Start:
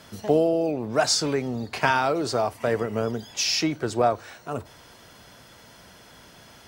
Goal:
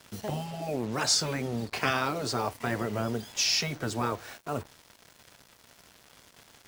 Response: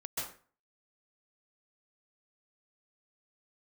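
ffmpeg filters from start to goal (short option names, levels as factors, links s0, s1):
-af "afftfilt=real='re*lt(hypot(re,im),0.355)':imag='im*lt(hypot(re,im),0.355)':win_size=1024:overlap=0.75,acrusher=bits=6:mix=0:aa=0.5,volume=0.841"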